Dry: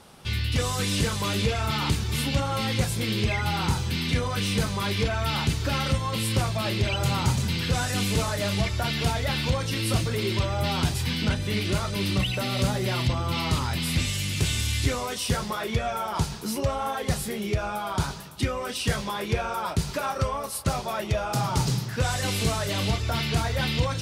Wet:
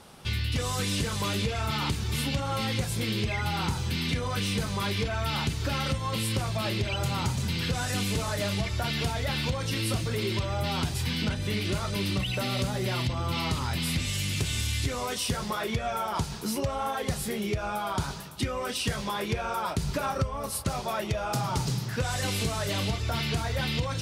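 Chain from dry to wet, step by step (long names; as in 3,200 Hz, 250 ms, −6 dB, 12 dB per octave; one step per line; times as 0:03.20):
0:19.82–0:20.64: low-shelf EQ 230 Hz +10 dB
downward compressor 5 to 1, threshold −25 dBFS, peak gain reduction 12 dB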